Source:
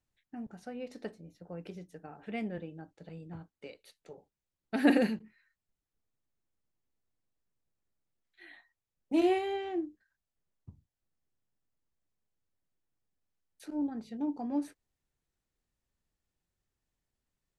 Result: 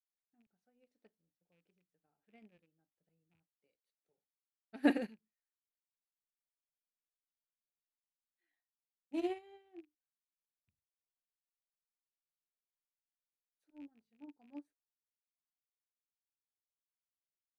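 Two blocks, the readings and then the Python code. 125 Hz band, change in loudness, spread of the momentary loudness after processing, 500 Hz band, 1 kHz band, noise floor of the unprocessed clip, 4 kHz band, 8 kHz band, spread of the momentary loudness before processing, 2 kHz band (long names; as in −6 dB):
below −15 dB, −3.0 dB, 23 LU, −10.5 dB, −11.0 dB, below −85 dBFS, −10.0 dB, can't be measured, 21 LU, −8.0 dB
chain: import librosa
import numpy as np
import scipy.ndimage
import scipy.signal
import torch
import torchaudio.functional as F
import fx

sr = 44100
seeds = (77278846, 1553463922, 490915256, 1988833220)

y = fx.rattle_buzz(x, sr, strikes_db=-43.0, level_db=-35.0)
y = fx.upward_expand(y, sr, threshold_db=-41.0, expansion=2.5)
y = y * 10.0 ** (-3.0 / 20.0)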